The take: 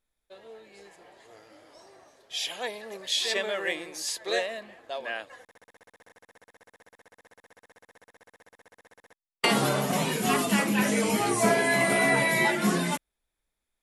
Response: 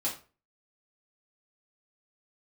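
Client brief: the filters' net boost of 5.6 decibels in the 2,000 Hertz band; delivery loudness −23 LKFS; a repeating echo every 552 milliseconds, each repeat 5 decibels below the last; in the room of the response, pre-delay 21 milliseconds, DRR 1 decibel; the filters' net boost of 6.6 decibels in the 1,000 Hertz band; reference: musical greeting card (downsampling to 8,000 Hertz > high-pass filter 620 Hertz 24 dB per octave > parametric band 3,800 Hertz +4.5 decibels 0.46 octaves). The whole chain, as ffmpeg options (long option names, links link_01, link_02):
-filter_complex "[0:a]equalizer=frequency=1000:width_type=o:gain=8,equalizer=frequency=2000:width_type=o:gain=4,aecho=1:1:552|1104|1656|2208|2760|3312|3864:0.562|0.315|0.176|0.0988|0.0553|0.031|0.0173,asplit=2[link_01][link_02];[1:a]atrim=start_sample=2205,adelay=21[link_03];[link_02][link_03]afir=irnorm=-1:irlink=0,volume=-6dB[link_04];[link_01][link_04]amix=inputs=2:normalize=0,aresample=8000,aresample=44100,highpass=frequency=620:width=0.5412,highpass=frequency=620:width=1.3066,equalizer=frequency=3800:width_type=o:width=0.46:gain=4.5,volume=-3.5dB"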